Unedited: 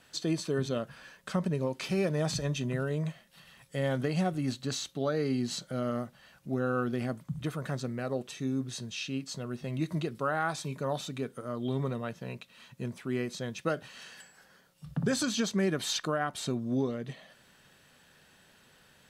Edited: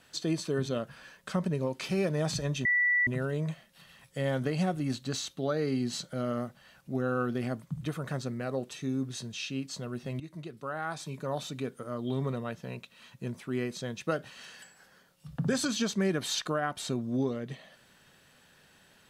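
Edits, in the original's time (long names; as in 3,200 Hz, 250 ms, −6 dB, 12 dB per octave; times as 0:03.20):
0:02.65: insert tone 1,960 Hz −22.5 dBFS 0.42 s
0:09.78–0:11.13: fade in, from −14 dB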